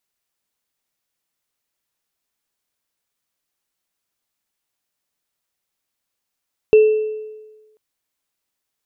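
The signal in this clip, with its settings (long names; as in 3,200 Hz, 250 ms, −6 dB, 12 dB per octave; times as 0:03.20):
inharmonic partials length 1.04 s, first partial 431 Hz, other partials 2,670 Hz, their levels −19 dB, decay 1.25 s, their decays 0.83 s, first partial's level −5 dB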